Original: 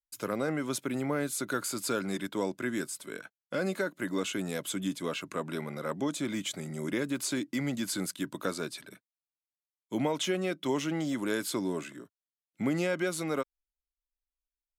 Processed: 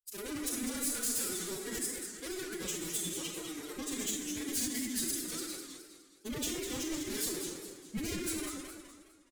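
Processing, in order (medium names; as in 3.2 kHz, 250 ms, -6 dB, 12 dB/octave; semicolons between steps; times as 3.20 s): power-law waveshaper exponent 1.4; granular stretch 0.63×, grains 65 ms; feedback delay 90 ms, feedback 23%, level -20 dB; in parallel at +1 dB: peak limiter -29.5 dBFS, peak gain reduction 11.5 dB; on the sum: tone controls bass -1 dB, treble +8 dB; reverberation RT60 1.0 s, pre-delay 23 ms, DRR 1.5 dB; wavefolder -24 dBFS; formant-preserving pitch shift +11.5 st; peaking EQ 790 Hz -14.5 dB 2.7 oct; modulated delay 207 ms, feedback 44%, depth 214 cents, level -7 dB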